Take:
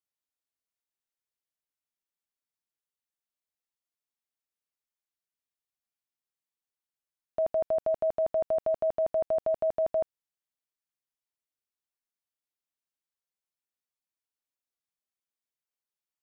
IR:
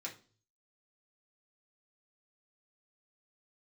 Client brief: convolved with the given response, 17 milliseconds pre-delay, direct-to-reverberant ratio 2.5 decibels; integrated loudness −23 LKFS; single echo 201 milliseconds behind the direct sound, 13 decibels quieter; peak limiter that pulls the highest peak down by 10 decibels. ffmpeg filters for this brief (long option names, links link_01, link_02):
-filter_complex "[0:a]alimiter=level_in=8dB:limit=-24dB:level=0:latency=1,volume=-8dB,aecho=1:1:201:0.224,asplit=2[link_01][link_02];[1:a]atrim=start_sample=2205,adelay=17[link_03];[link_02][link_03]afir=irnorm=-1:irlink=0,volume=-1.5dB[link_04];[link_01][link_04]amix=inputs=2:normalize=0,volume=16dB"